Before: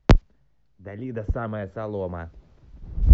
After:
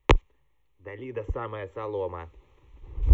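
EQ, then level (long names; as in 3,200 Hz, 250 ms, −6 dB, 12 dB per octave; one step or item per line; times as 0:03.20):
low-shelf EQ 410 Hz −10 dB
phaser with its sweep stopped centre 1,000 Hz, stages 8
+5.5 dB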